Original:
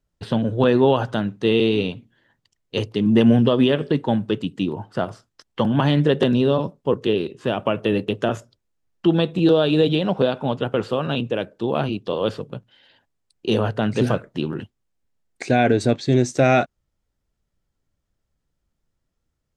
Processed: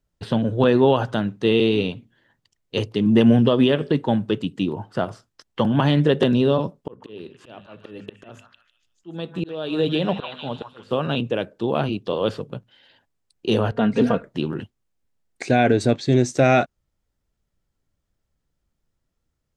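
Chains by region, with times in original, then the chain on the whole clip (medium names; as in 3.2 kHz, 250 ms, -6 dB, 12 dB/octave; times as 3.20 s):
6.81–10.91 s: hum notches 50/100/150/200/250 Hz + slow attack 602 ms + repeats whose band climbs or falls 152 ms, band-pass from 1.3 kHz, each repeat 0.7 oct, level -2.5 dB
13.71–14.24 s: low-pass 2.4 kHz 6 dB/octave + comb 4.3 ms, depth 62%
whole clip: none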